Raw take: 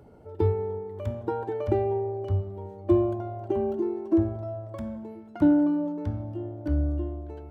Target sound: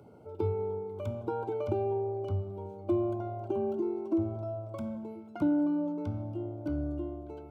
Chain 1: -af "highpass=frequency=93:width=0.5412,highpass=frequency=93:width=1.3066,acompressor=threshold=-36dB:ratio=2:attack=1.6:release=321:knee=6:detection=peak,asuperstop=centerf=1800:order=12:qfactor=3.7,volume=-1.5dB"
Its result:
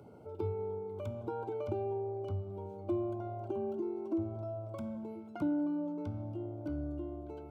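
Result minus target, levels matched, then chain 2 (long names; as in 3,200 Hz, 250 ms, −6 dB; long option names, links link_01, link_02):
downward compressor: peak gain reduction +5 dB
-af "highpass=frequency=93:width=0.5412,highpass=frequency=93:width=1.3066,acompressor=threshold=-25.5dB:ratio=2:attack=1.6:release=321:knee=6:detection=peak,asuperstop=centerf=1800:order=12:qfactor=3.7,volume=-1.5dB"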